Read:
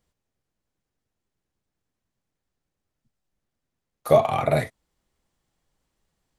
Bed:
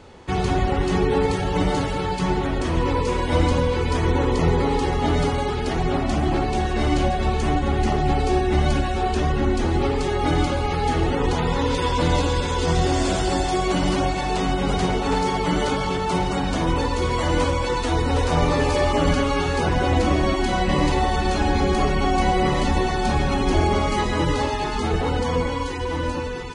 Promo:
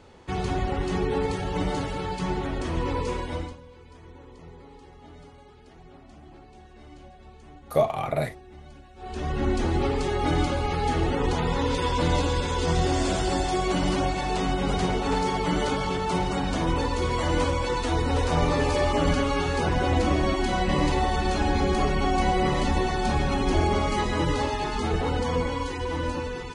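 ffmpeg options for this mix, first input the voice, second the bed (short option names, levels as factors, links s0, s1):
-filter_complex "[0:a]adelay=3650,volume=0.562[s0];[1:a]volume=7.5,afade=t=out:st=3.1:d=0.47:silence=0.0891251,afade=t=in:st=8.96:d=0.54:silence=0.0668344[s1];[s0][s1]amix=inputs=2:normalize=0"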